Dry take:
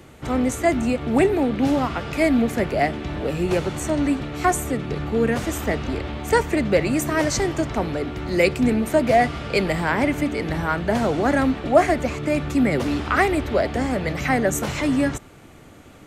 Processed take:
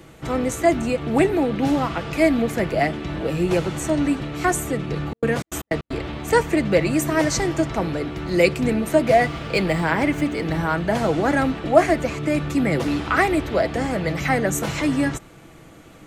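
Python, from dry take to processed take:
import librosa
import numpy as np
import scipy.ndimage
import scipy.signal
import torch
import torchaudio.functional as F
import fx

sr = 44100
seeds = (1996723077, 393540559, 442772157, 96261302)

y = fx.median_filter(x, sr, points=3, at=(9.19, 10.59))
y = y + 0.39 * np.pad(y, (int(6.1 * sr / 1000.0), 0))[:len(y)]
y = fx.step_gate(y, sr, bpm=155, pattern='x.x.x.xxx.x', floor_db=-60.0, edge_ms=4.5, at=(4.99, 6.07), fade=0.02)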